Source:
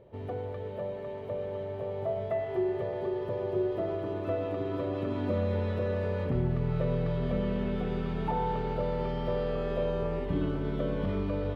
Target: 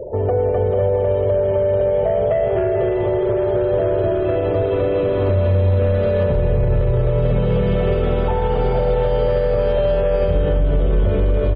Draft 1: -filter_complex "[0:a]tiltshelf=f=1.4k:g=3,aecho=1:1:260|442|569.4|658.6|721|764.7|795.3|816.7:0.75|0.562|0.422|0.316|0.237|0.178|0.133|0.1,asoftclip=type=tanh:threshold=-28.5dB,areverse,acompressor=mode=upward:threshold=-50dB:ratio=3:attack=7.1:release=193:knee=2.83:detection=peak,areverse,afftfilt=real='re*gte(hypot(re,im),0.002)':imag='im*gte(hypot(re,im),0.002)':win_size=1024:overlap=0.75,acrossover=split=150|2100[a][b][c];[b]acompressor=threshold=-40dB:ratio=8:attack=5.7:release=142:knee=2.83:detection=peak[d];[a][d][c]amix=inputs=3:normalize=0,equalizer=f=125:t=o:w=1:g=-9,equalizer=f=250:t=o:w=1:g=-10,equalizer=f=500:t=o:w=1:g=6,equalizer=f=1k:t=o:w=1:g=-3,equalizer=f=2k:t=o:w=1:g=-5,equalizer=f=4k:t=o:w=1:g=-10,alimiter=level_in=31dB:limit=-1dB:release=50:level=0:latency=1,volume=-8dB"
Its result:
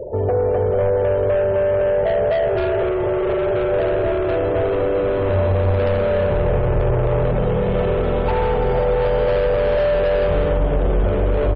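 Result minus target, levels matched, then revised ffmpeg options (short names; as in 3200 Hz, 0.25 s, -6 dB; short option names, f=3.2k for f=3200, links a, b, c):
soft clip: distortion +11 dB
-filter_complex "[0:a]tiltshelf=f=1.4k:g=3,aecho=1:1:260|442|569.4|658.6|721|764.7|795.3|816.7:0.75|0.562|0.422|0.316|0.237|0.178|0.133|0.1,asoftclip=type=tanh:threshold=-17.5dB,areverse,acompressor=mode=upward:threshold=-50dB:ratio=3:attack=7.1:release=193:knee=2.83:detection=peak,areverse,afftfilt=real='re*gte(hypot(re,im),0.002)':imag='im*gte(hypot(re,im),0.002)':win_size=1024:overlap=0.75,acrossover=split=150|2100[a][b][c];[b]acompressor=threshold=-40dB:ratio=8:attack=5.7:release=142:knee=2.83:detection=peak[d];[a][d][c]amix=inputs=3:normalize=0,equalizer=f=125:t=o:w=1:g=-9,equalizer=f=250:t=o:w=1:g=-10,equalizer=f=500:t=o:w=1:g=6,equalizer=f=1k:t=o:w=1:g=-3,equalizer=f=2k:t=o:w=1:g=-5,equalizer=f=4k:t=o:w=1:g=-10,alimiter=level_in=31dB:limit=-1dB:release=50:level=0:latency=1,volume=-8dB"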